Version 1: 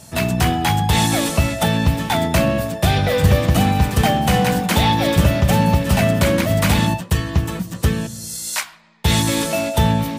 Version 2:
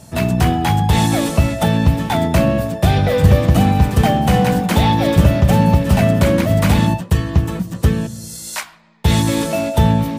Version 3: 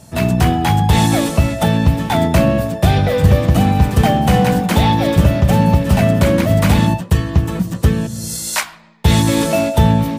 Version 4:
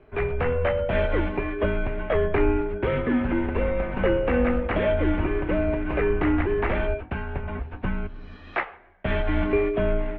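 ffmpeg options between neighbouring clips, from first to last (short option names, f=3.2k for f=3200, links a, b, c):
-af "tiltshelf=f=1.1k:g=3.5"
-af "dynaudnorm=f=130:g=3:m=9dB,volume=-1dB"
-af "highpass=f=230:t=q:w=0.5412,highpass=f=230:t=q:w=1.307,lowpass=f=2.7k:t=q:w=0.5176,lowpass=f=2.7k:t=q:w=0.7071,lowpass=f=2.7k:t=q:w=1.932,afreqshift=-250,volume=-5dB"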